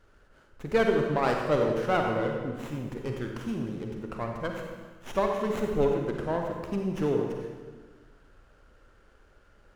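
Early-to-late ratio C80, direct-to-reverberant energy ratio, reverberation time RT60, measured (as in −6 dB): 4.0 dB, 1.5 dB, 1.5 s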